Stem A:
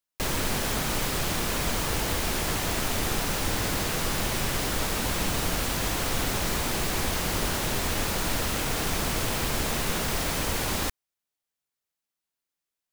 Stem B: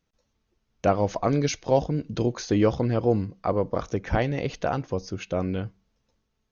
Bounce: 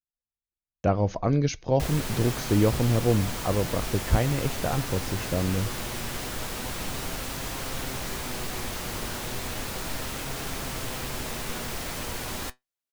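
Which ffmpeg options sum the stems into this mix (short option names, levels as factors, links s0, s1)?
-filter_complex "[0:a]flanger=delay=7.4:depth=1:regen=70:speed=0.34:shape=triangular,adelay=1600,volume=0.891[s0];[1:a]agate=range=0.0224:threshold=0.00794:ratio=3:detection=peak,lowshelf=f=170:g=11,volume=0.631[s1];[s0][s1]amix=inputs=2:normalize=0"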